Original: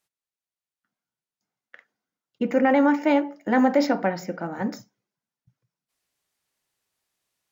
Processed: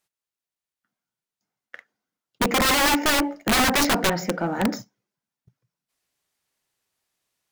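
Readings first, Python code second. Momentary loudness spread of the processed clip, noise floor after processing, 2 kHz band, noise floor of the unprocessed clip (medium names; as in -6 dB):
9 LU, under -85 dBFS, +6.5 dB, under -85 dBFS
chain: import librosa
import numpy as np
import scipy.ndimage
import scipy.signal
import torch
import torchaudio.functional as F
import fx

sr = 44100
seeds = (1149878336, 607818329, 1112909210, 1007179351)

y = (np.mod(10.0 ** (18.0 / 20.0) * x + 1.0, 2.0) - 1.0) / 10.0 ** (18.0 / 20.0)
y = fx.leveller(y, sr, passes=1)
y = F.gain(torch.from_numpy(y), 3.0).numpy()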